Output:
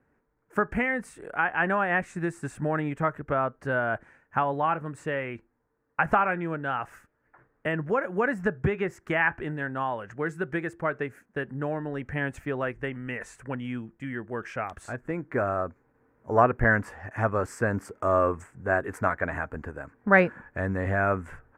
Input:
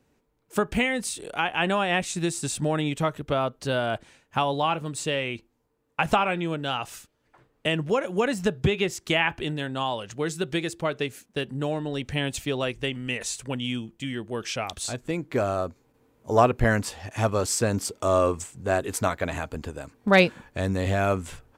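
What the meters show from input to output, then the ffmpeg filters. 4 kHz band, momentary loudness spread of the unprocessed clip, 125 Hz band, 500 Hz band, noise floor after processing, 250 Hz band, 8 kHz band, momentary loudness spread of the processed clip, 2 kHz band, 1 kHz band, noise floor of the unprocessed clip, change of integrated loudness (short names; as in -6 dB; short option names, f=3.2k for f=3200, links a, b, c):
-18.5 dB, 9 LU, -3.0 dB, -2.5 dB, -72 dBFS, -3.0 dB, under -15 dB, 12 LU, +1.5 dB, 0.0 dB, -70 dBFS, -1.5 dB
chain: -af "highshelf=f=2.5k:t=q:w=3:g=-14,volume=-3dB"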